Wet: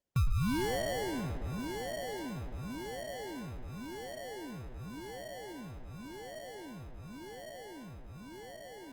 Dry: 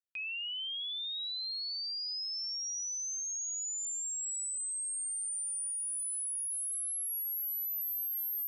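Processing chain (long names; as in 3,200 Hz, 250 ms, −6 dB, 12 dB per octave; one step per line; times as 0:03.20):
high-pass filter 100 Hz 24 dB per octave
spectral tilt +2.5 dB per octave
in parallel at +1 dB: brickwall limiter −32 dBFS, peak gain reduction 8.5 dB
on the sum: formant filter e
speed change −5%
decimation without filtering 35×
on a send: feedback echo with a low-pass in the loop 109 ms, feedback 83%, low-pass 3,900 Hz, level −13 dB
on the sum: level +10.5 dB
Opus 32 kbit/s 48,000 Hz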